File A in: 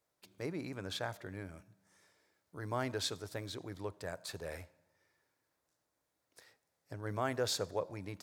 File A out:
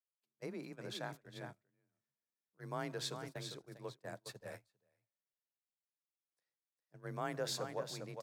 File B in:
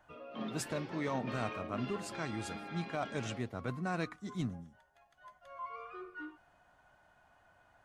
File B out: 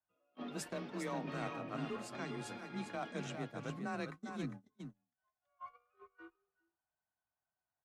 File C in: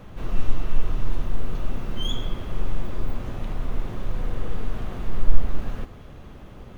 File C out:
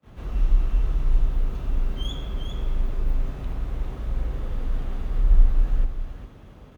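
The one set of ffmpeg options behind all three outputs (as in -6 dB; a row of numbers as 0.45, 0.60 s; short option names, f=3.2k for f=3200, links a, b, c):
-af "aecho=1:1:403:0.447,agate=range=-26dB:threshold=-42dB:ratio=16:detection=peak,afreqshift=27,volume=-5dB"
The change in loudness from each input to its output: -4.5, -4.0, +4.5 LU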